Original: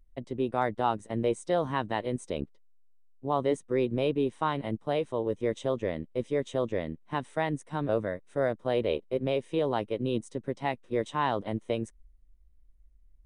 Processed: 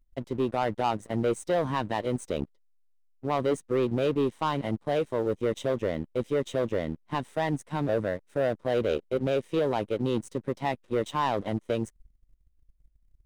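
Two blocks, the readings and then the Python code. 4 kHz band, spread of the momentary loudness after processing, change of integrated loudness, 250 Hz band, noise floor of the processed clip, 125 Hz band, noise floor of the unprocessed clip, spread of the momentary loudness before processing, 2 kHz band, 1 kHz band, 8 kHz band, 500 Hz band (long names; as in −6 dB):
+1.5 dB, 5 LU, +1.5 dB, +2.0 dB, −65 dBFS, +2.5 dB, −58 dBFS, 6 LU, +1.0 dB, +1.0 dB, can't be measured, +1.5 dB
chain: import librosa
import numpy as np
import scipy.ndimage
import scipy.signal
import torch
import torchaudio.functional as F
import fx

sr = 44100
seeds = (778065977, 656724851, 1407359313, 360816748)

y = fx.leveller(x, sr, passes=2)
y = y * librosa.db_to_amplitude(-3.5)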